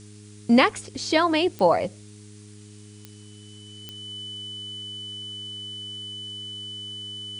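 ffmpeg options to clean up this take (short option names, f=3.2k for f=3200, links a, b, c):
-af "adeclick=t=4,bandreject=f=104.1:t=h:w=4,bandreject=f=208.2:t=h:w=4,bandreject=f=312.3:t=h:w=4,bandreject=f=416.4:t=h:w=4,bandreject=f=3k:w=30,afftdn=nr=24:nf=-46"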